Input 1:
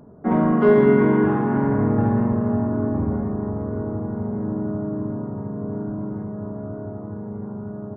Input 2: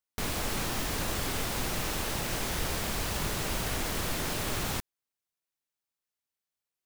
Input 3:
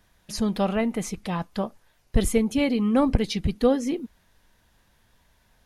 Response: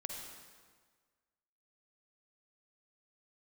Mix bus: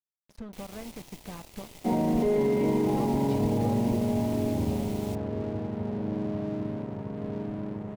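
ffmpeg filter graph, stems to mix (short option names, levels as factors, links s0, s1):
-filter_complex "[0:a]equalizer=f=590:w=1.5:g=3,adelay=1600,volume=0.596[s0];[1:a]adelay=350,volume=0.266[s1];[2:a]acompressor=threshold=0.0355:ratio=6,lowpass=f=1500:p=1,volume=0.531[s2];[s0][s1]amix=inputs=2:normalize=0,asuperstop=centerf=1400:order=20:qfactor=1.6,alimiter=limit=0.133:level=0:latency=1:release=11,volume=1[s3];[s2][s3]amix=inputs=2:normalize=0,aeval=exprs='sgn(val(0))*max(abs(val(0))-0.00668,0)':c=same"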